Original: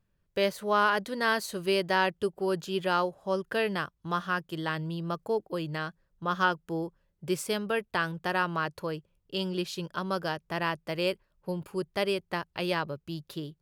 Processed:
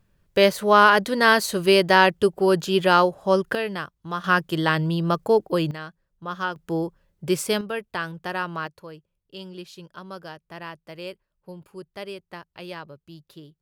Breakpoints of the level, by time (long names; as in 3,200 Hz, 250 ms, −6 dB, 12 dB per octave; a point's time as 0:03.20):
+10 dB
from 0:03.55 +1 dB
from 0:04.24 +10.5 dB
from 0:05.71 −2 dB
from 0:06.56 +7 dB
from 0:07.61 0 dB
from 0:08.67 −7 dB